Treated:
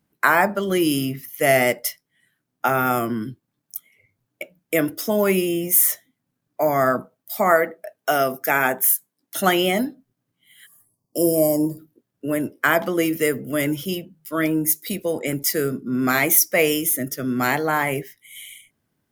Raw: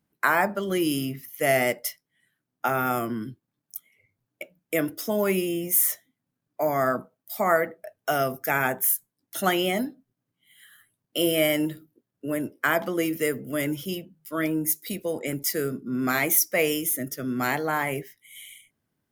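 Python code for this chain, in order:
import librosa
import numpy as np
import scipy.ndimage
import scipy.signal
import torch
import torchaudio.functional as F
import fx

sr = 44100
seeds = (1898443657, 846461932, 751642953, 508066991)

y = fx.highpass(x, sr, hz=190.0, slope=12, at=(7.51, 9.36))
y = fx.spec_box(y, sr, start_s=10.66, length_s=1.13, low_hz=1200.0, high_hz=4400.0, gain_db=-27)
y = y * librosa.db_to_amplitude(5.0)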